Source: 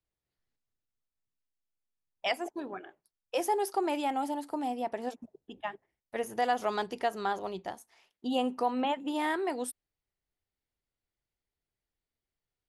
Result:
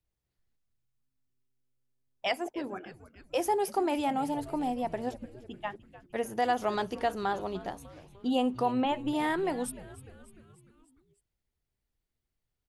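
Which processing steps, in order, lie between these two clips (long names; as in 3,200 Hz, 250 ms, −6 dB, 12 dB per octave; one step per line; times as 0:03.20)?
low-shelf EQ 190 Hz +9.5 dB
echo with shifted repeats 299 ms, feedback 58%, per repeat −130 Hz, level −17 dB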